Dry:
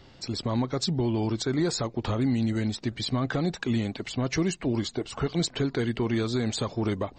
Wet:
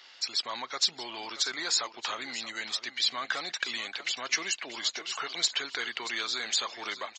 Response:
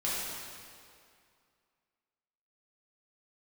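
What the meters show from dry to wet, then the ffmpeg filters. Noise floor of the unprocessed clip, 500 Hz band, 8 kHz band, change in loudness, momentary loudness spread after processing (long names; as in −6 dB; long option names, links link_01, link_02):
−52 dBFS, −14.0 dB, +5.0 dB, −2.5 dB, 7 LU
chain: -filter_complex "[0:a]highpass=1500,asoftclip=type=tanh:threshold=-22dB,asplit=2[link_01][link_02];[link_02]aecho=0:1:629:0.211[link_03];[link_01][link_03]amix=inputs=2:normalize=0,aresample=16000,aresample=44100,volume=7dB"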